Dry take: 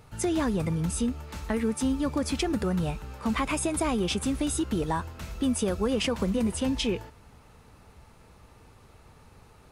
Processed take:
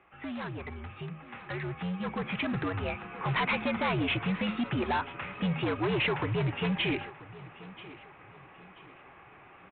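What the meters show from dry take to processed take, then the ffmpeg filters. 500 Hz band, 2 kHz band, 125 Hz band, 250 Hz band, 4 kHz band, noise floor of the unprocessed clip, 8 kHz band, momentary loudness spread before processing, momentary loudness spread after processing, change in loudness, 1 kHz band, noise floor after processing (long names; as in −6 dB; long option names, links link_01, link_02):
−4.0 dB, +5.0 dB, −1.0 dB, −6.0 dB, −1.5 dB, −55 dBFS, below −40 dB, 4 LU, 18 LU, −3.5 dB, +0.5 dB, −54 dBFS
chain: -af "tiltshelf=frequency=1100:gain=-7,bandreject=frequency=60:width_type=h:width=6,bandreject=frequency=120:width_type=h:width=6,bandreject=frequency=180:width_type=h:width=6,bandreject=frequency=240:width_type=h:width=6,bandreject=frequency=300:width_type=h:width=6,highpass=frequency=180:width_type=q:width=0.5412,highpass=frequency=180:width_type=q:width=1.307,lowpass=frequency=2700:width_type=q:width=0.5176,lowpass=frequency=2700:width_type=q:width=0.7071,lowpass=frequency=2700:width_type=q:width=1.932,afreqshift=-83,aresample=8000,asoftclip=type=hard:threshold=-31.5dB,aresample=44100,aecho=1:1:984|1968|2952:0.119|0.0416|0.0146,dynaudnorm=framelen=210:gausssize=21:maxgain=9dB,volume=-3dB"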